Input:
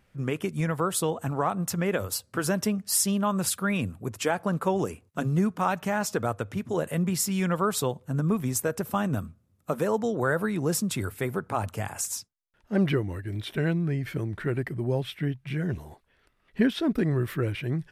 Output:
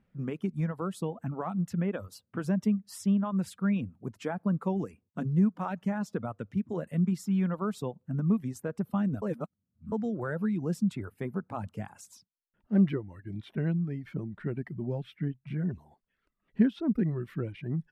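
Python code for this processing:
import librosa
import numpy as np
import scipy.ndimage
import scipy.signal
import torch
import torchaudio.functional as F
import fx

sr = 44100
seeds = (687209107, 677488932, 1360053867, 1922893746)

y = fx.edit(x, sr, fx.reverse_span(start_s=9.22, length_s=0.7), tone=tone)
y = fx.peak_eq(y, sr, hz=200.0, db=11.0, octaves=0.95)
y = fx.dereverb_blind(y, sr, rt60_s=0.78)
y = fx.lowpass(y, sr, hz=2000.0, slope=6)
y = y * 10.0 ** (-8.5 / 20.0)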